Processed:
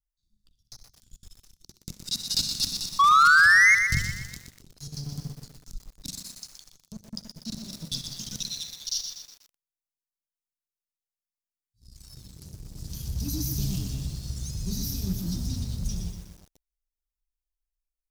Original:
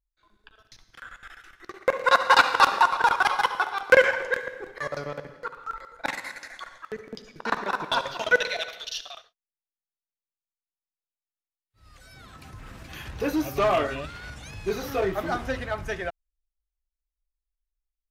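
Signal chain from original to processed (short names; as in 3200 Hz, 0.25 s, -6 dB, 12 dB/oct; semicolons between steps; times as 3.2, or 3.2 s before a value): elliptic band-stop 190–5000 Hz, stop band 50 dB; thin delay 63 ms, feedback 37%, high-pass 2000 Hz, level -14.5 dB; 2.99–3.75 painted sound rise 1100–2200 Hz -22 dBFS; 5.12–5.78 tone controls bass +6 dB, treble +7 dB; 12.3–12.76 compressor 2:1, threshold -49 dBFS, peak gain reduction 5.5 dB; notches 50/100/150/200/250 Hz; sample leveller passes 2; 3.44–4.28 resonant low shelf 160 Hz +10.5 dB, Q 1.5; lo-fi delay 0.122 s, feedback 55%, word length 8-bit, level -7 dB; gain +1.5 dB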